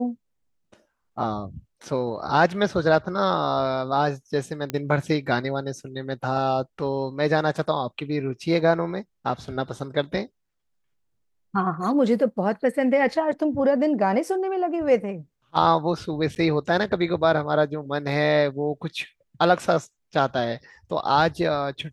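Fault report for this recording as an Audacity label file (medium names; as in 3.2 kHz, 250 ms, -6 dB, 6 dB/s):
4.700000	4.700000	pop -12 dBFS
16.350000	16.360000	dropout 9.3 ms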